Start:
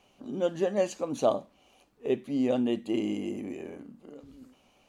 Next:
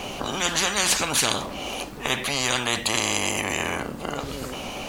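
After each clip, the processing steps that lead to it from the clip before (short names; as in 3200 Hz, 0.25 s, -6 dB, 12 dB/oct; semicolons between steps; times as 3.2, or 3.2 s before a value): spectral compressor 10:1; gain +6 dB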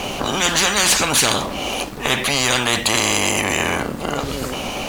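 sample leveller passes 2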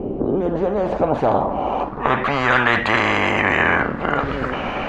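low-pass sweep 370 Hz -> 1700 Hz, 0.16–2.68; gain +1 dB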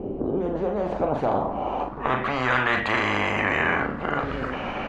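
doubler 39 ms -7.5 dB; gain -6.5 dB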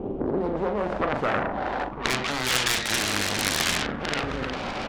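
self-modulated delay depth 0.76 ms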